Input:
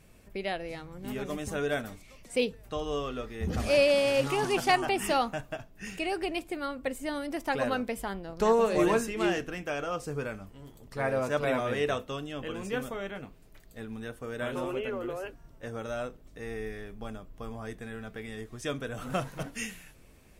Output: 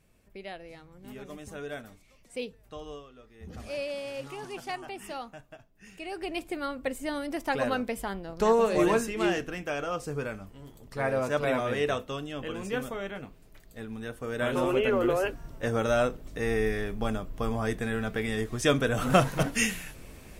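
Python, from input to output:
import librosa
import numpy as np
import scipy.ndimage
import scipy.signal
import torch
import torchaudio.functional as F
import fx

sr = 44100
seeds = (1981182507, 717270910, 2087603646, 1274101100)

y = fx.gain(x, sr, db=fx.line((2.9, -8.0), (3.09, -18.0), (3.56, -11.5), (5.86, -11.5), (6.43, 1.0), (13.99, 1.0), (15.05, 10.0)))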